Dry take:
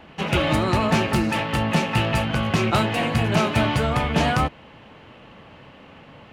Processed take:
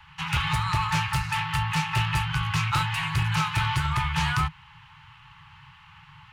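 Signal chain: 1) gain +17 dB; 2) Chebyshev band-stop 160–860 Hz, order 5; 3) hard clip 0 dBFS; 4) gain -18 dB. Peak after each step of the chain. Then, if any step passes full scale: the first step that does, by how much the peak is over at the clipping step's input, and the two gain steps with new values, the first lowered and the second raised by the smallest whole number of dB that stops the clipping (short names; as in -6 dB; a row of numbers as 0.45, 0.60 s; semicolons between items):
+7.0, +8.5, 0.0, -18.0 dBFS; step 1, 8.5 dB; step 1 +8 dB, step 4 -9 dB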